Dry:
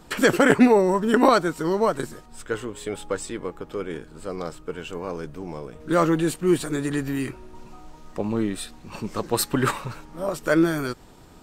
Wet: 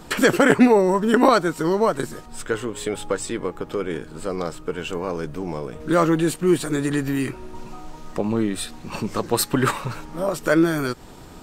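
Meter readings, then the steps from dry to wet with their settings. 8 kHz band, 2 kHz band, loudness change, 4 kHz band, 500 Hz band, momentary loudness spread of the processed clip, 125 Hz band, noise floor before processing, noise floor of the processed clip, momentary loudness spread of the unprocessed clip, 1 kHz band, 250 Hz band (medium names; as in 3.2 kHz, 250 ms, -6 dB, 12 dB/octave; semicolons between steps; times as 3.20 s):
+3.0 dB, +2.0 dB, +1.5 dB, +2.5 dB, +2.0 dB, 15 LU, +2.5 dB, -48 dBFS, -42 dBFS, 18 LU, +2.0 dB, +2.0 dB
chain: hum notches 50/100 Hz; in parallel at +2 dB: compression, threshold -32 dBFS, peak gain reduction 19 dB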